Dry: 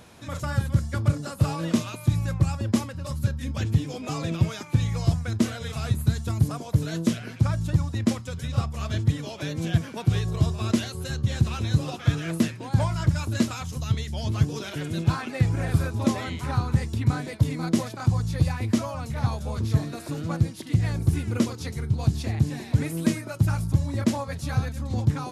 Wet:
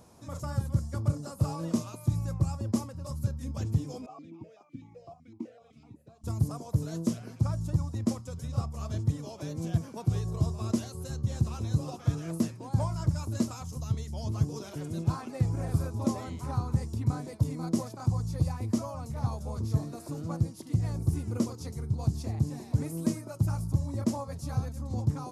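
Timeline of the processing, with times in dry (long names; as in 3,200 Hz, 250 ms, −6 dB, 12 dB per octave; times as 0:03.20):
0:04.06–0:06.24: formant filter that steps through the vowels 7.9 Hz
whole clip: flat-topped bell 2,400 Hz −10.5 dB; level −5.5 dB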